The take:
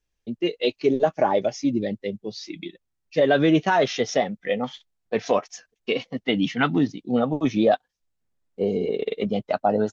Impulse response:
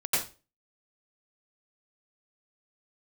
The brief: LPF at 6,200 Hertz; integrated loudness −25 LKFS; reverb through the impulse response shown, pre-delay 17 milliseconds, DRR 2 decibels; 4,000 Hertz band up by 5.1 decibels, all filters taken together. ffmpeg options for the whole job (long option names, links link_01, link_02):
-filter_complex "[0:a]lowpass=6200,equalizer=frequency=4000:width_type=o:gain=7.5,asplit=2[link_01][link_02];[1:a]atrim=start_sample=2205,adelay=17[link_03];[link_02][link_03]afir=irnorm=-1:irlink=0,volume=-12dB[link_04];[link_01][link_04]amix=inputs=2:normalize=0,volume=-3dB"